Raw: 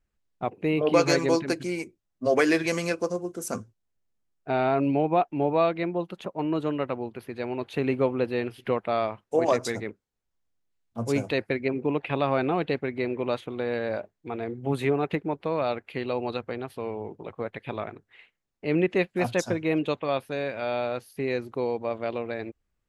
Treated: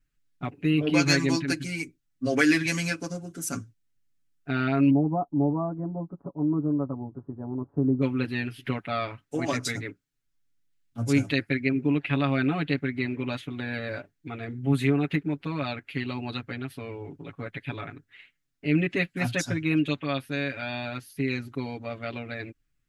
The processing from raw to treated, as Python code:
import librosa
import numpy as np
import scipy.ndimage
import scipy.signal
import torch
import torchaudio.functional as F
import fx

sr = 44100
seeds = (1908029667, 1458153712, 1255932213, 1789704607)

y = fx.steep_lowpass(x, sr, hz=1100.0, slope=48, at=(4.89, 8.01), fade=0.02)
y = fx.band_shelf(y, sr, hz=660.0, db=-11.0, octaves=1.7)
y = y + 1.0 * np.pad(y, (int(7.1 * sr / 1000.0), 0))[:len(y)]